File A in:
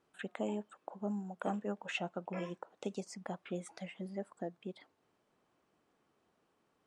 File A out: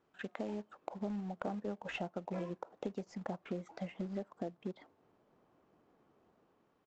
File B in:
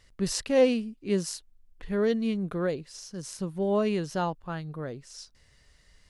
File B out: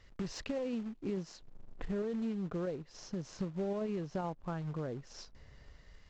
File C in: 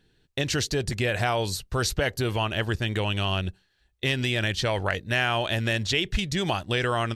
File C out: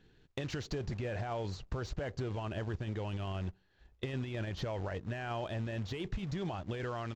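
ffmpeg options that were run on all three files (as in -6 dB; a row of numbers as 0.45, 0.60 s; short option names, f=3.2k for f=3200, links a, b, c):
-filter_complex "[0:a]aresample=16000,acrusher=bits=3:mode=log:mix=0:aa=0.000001,aresample=44100,alimiter=limit=-20dB:level=0:latency=1:release=10,acrossover=split=1100[a][b];[a]dynaudnorm=f=260:g=5:m=6dB[c];[b]volume=26.5dB,asoftclip=hard,volume=-26.5dB[d];[c][d]amix=inputs=2:normalize=0,lowpass=f=2.4k:p=1,acompressor=threshold=-38dB:ratio=4,volume=1dB"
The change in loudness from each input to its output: -1.0, -10.0, -12.5 LU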